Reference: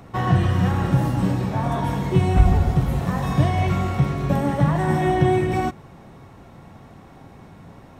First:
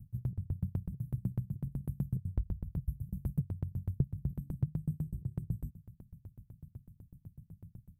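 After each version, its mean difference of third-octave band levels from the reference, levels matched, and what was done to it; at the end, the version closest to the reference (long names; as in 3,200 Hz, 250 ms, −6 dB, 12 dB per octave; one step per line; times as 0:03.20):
14.5 dB: inverse Chebyshev band-stop filter 480–4,500 Hz, stop band 60 dB
downward compressor 12 to 1, threshold −29 dBFS, peak gain reduction 21 dB
tremolo with a ramp in dB decaying 8 Hz, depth 34 dB
level +5 dB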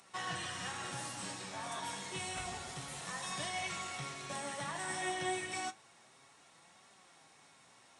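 10.5 dB: first difference
flanger 0.29 Hz, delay 5 ms, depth 6.2 ms, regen +63%
downsampling to 22,050 Hz
level +7 dB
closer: second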